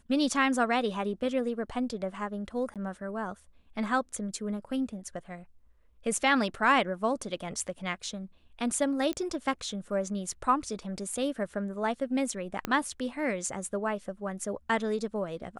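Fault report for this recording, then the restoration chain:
0:02.74–0:02.76: drop-out 17 ms
0:09.13: click −19 dBFS
0:12.65: click −15 dBFS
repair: click removal
repair the gap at 0:02.74, 17 ms

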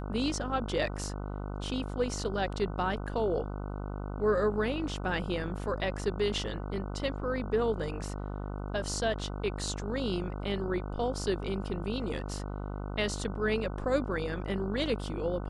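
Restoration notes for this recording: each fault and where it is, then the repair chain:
mains buzz 50 Hz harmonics 30 −37 dBFS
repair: hum removal 50 Hz, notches 30

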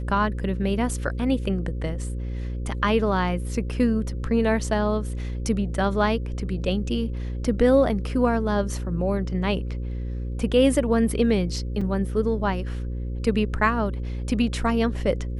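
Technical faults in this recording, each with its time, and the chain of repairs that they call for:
mains buzz 60 Hz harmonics 9 −29 dBFS
0:11.81: drop-out 4.5 ms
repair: hum removal 60 Hz, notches 9
repair the gap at 0:11.81, 4.5 ms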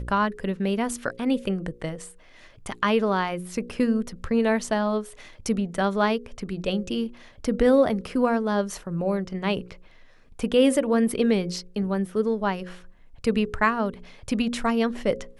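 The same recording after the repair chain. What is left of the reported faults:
none of them is left

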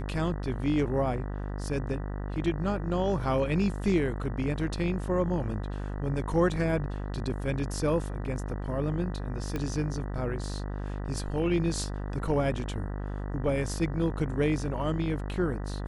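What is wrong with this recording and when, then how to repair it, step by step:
mains buzz 50 Hz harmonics 39 −34 dBFS
0:09.56: click −19 dBFS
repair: click removal
hum removal 50 Hz, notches 39

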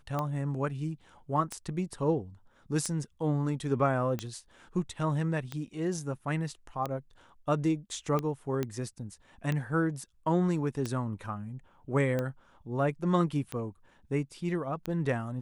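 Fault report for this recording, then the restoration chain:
scratch tick 45 rpm −19 dBFS
0:08.63: click −18 dBFS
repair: click removal

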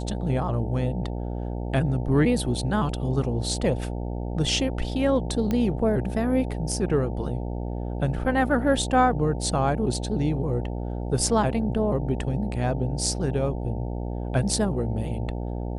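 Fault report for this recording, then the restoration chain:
mains buzz 60 Hz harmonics 15 −30 dBFS
0:05.51: click −14 dBFS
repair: click removal
hum removal 60 Hz, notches 15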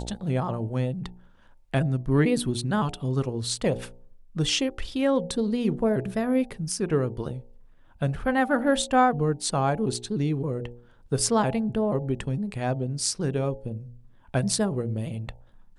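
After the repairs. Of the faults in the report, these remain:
none of them is left

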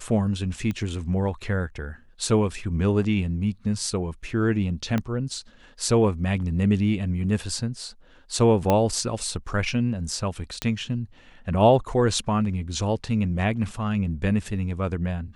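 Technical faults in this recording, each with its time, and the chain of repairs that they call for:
0:00.71: click −18 dBFS
0:04.98: click −13 dBFS
0:08.70: click −8 dBFS
0:10.62: click −10 dBFS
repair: click removal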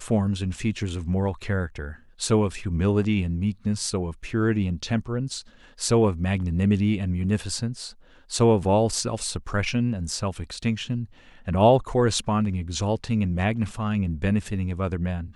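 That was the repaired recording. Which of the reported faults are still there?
0:00.71: click
0:04.98: click
0:10.62: click

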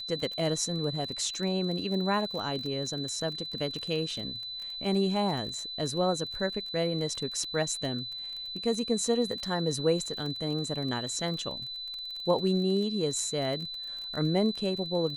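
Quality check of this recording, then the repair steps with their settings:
surface crackle 27 per second −35 dBFS
whistle 4,000 Hz −36 dBFS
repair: click removal
notch filter 4,000 Hz, Q 30

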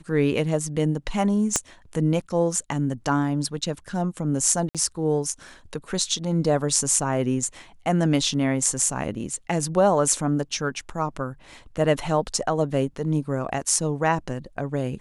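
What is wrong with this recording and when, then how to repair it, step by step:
0:01.56: click −6 dBFS
0:04.69–0:04.75: drop-out 57 ms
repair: click removal
repair the gap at 0:04.69, 57 ms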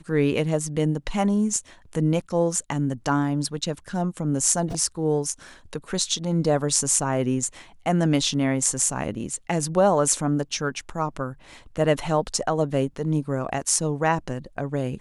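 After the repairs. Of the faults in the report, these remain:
0:01.56: click

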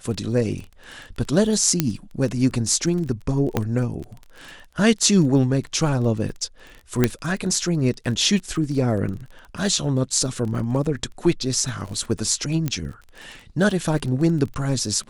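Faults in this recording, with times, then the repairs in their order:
surface crackle 22 per second −30 dBFS
0:01.80: click −3 dBFS
0:03.57: click −7 dBFS
0:07.04: click −3 dBFS
0:12.68: click −10 dBFS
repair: click removal

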